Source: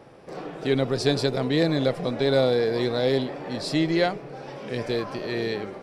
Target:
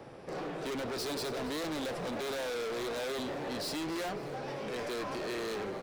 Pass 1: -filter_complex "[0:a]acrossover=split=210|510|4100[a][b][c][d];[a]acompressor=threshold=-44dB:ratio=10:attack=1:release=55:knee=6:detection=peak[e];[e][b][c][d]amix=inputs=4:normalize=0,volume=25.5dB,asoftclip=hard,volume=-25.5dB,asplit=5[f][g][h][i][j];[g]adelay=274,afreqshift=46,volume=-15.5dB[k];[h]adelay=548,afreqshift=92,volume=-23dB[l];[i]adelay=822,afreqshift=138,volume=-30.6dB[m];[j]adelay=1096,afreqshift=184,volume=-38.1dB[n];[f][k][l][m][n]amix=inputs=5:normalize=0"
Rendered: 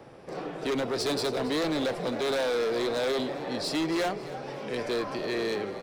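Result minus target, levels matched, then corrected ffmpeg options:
overloaded stage: distortion -5 dB
-filter_complex "[0:a]acrossover=split=210|510|4100[a][b][c][d];[a]acompressor=threshold=-44dB:ratio=10:attack=1:release=55:knee=6:detection=peak[e];[e][b][c][d]amix=inputs=4:normalize=0,volume=35dB,asoftclip=hard,volume=-35dB,asplit=5[f][g][h][i][j];[g]adelay=274,afreqshift=46,volume=-15.5dB[k];[h]adelay=548,afreqshift=92,volume=-23dB[l];[i]adelay=822,afreqshift=138,volume=-30.6dB[m];[j]adelay=1096,afreqshift=184,volume=-38.1dB[n];[f][k][l][m][n]amix=inputs=5:normalize=0"

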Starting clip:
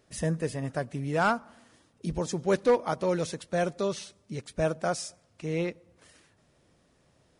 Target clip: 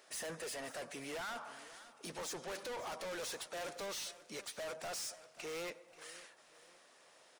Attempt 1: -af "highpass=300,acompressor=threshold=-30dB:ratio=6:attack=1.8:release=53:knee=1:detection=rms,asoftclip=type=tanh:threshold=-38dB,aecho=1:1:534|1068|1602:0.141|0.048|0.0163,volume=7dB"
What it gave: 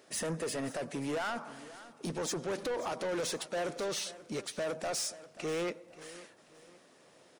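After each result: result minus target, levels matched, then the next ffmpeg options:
250 Hz band +5.5 dB; soft clip: distortion -5 dB
-af "highpass=700,acompressor=threshold=-30dB:ratio=6:attack=1.8:release=53:knee=1:detection=rms,asoftclip=type=tanh:threshold=-38dB,aecho=1:1:534|1068|1602:0.141|0.048|0.0163,volume=7dB"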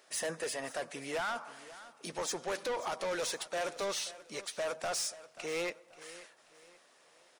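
soft clip: distortion -6 dB
-af "highpass=700,acompressor=threshold=-30dB:ratio=6:attack=1.8:release=53:knee=1:detection=rms,asoftclip=type=tanh:threshold=-48dB,aecho=1:1:534|1068|1602:0.141|0.048|0.0163,volume=7dB"

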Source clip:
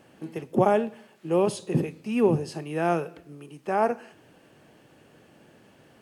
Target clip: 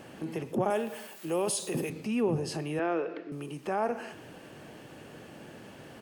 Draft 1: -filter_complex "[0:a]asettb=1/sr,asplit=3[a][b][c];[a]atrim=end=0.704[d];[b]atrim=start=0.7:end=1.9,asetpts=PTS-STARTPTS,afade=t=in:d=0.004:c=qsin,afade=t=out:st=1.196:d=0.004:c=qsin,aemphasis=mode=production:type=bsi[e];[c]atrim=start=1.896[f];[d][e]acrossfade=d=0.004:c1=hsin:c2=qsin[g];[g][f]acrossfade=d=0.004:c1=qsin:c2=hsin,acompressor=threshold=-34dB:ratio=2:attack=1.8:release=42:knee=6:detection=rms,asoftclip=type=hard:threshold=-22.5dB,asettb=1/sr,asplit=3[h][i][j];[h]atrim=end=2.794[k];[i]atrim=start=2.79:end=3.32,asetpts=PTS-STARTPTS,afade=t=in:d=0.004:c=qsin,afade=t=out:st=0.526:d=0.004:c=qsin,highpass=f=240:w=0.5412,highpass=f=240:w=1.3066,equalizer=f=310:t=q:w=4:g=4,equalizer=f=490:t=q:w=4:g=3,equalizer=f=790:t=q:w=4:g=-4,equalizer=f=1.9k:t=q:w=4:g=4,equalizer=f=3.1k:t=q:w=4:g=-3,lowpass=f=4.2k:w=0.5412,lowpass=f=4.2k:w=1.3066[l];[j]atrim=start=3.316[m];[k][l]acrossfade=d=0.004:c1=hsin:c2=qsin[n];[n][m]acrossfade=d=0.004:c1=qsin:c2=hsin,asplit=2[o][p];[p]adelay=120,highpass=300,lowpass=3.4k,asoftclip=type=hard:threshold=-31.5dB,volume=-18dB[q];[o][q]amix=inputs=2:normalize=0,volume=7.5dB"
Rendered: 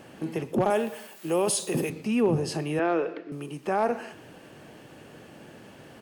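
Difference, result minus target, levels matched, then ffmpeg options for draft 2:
compressor: peak gain reduction -4.5 dB
-filter_complex "[0:a]asettb=1/sr,asplit=3[a][b][c];[a]atrim=end=0.704[d];[b]atrim=start=0.7:end=1.9,asetpts=PTS-STARTPTS,afade=t=in:d=0.004:c=qsin,afade=t=out:st=1.196:d=0.004:c=qsin,aemphasis=mode=production:type=bsi[e];[c]atrim=start=1.896[f];[d][e]acrossfade=d=0.004:c1=hsin:c2=qsin[g];[g][f]acrossfade=d=0.004:c1=qsin:c2=hsin,acompressor=threshold=-43.5dB:ratio=2:attack=1.8:release=42:knee=6:detection=rms,asoftclip=type=hard:threshold=-22.5dB,asettb=1/sr,asplit=3[h][i][j];[h]atrim=end=2.794[k];[i]atrim=start=2.79:end=3.32,asetpts=PTS-STARTPTS,afade=t=in:d=0.004:c=qsin,afade=t=out:st=0.526:d=0.004:c=qsin,highpass=f=240:w=0.5412,highpass=f=240:w=1.3066,equalizer=f=310:t=q:w=4:g=4,equalizer=f=490:t=q:w=4:g=3,equalizer=f=790:t=q:w=4:g=-4,equalizer=f=1.9k:t=q:w=4:g=4,equalizer=f=3.1k:t=q:w=4:g=-3,lowpass=f=4.2k:w=0.5412,lowpass=f=4.2k:w=1.3066[l];[j]atrim=start=3.316[m];[k][l]acrossfade=d=0.004:c1=hsin:c2=qsin[n];[n][m]acrossfade=d=0.004:c1=qsin:c2=hsin,asplit=2[o][p];[p]adelay=120,highpass=300,lowpass=3.4k,asoftclip=type=hard:threshold=-31.5dB,volume=-18dB[q];[o][q]amix=inputs=2:normalize=0,volume=7.5dB"

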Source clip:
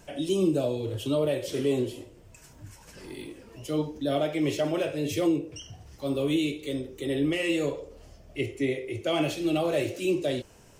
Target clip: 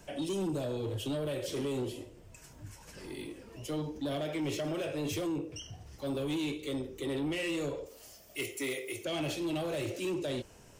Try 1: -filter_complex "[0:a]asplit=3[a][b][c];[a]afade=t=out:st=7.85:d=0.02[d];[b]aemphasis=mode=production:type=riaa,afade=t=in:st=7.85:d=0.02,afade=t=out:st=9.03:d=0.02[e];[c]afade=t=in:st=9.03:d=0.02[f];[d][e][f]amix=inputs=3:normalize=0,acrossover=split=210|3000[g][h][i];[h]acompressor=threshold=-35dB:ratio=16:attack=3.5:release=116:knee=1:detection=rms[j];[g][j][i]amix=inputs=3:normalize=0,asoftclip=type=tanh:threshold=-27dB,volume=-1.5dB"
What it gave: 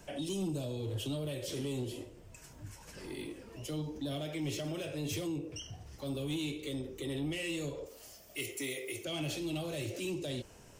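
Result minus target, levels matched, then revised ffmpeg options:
compressor: peak gain reduction +7.5 dB
-filter_complex "[0:a]asplit=3[a][b][c];[a]afade=t=out:st=7.85:d=0.02[d];[b]aemphasis=mode=production:type=riaa,afade=t=in:st=7.85:d=0.02,afade=t=out:st=9.03:d=0.02[e];[c]afade=t=in:st=9.03:d=0.02[f];[d][e][f]amix=inputs=3:normalize=0,acrossover=split=210|3000[g][h][i];[h]acompressor=threshold=-27dB:ratio=16:attack=3.5:release=116:knee=1:detection=rms[j];[g][j][i]amix=inputs=3:normalize=0,asoftclip=type=tanh:threshold=-27dB,volume=-1.5dB"

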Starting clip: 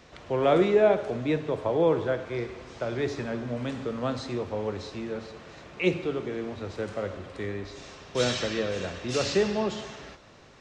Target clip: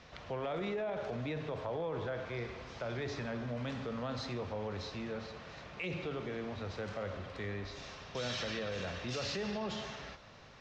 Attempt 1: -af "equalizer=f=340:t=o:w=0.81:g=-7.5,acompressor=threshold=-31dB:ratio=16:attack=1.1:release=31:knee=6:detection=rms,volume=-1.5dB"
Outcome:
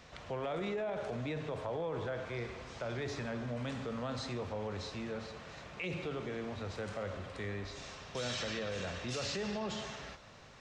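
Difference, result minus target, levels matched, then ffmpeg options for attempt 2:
8000 Hz band +4.0 dB
-af "lowpass=f=6.1k:w=0.5412,lowpass=f=6.1k:w=1.3066,equalizer=f=340:t=o:w=0.81:g=-7.5,acompressor=threshold=-31dB:ratio=16:attack=1.1:release=31:knee=6:detection=rms,volume=-1.5dB"

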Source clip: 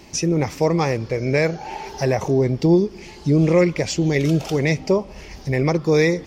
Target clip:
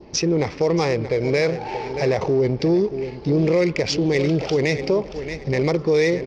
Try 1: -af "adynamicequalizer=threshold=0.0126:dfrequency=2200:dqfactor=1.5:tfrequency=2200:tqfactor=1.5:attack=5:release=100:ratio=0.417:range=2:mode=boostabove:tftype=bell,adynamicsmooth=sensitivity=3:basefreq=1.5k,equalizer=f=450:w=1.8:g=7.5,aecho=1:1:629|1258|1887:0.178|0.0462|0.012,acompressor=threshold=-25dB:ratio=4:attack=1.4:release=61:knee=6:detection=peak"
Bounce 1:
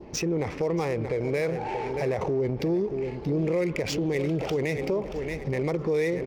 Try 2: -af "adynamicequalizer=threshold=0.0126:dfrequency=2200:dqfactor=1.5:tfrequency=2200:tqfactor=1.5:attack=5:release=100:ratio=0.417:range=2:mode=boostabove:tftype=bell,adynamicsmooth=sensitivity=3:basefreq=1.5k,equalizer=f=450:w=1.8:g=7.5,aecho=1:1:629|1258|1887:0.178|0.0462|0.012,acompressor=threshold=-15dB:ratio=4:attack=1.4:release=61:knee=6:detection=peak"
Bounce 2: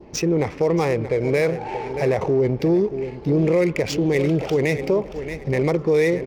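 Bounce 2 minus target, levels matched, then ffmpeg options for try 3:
4000 Hz band -6.0 dB
-af "adynamicequalizer=threshold=0.0126:dfrequency=2200:dqfactor=1.5:tfrequency=2200:tqfactor=1.5:attack=5:release=100:ratio=0.417:range=2:mode=boostabove:tftype=bell,adynamicsmooth=sensitivity=3:basefreq=1.5k,lowpass=f=5.1k:t=q:w=3,equalizer=f=450:w=1.8:g=7.5,aecho=1:1:629|1258|1887:0.178|0.0462|0.012,acompressor=threshold=-15dB:ratio=4:attack=1.4:release=61:knee=6:detection=peak"

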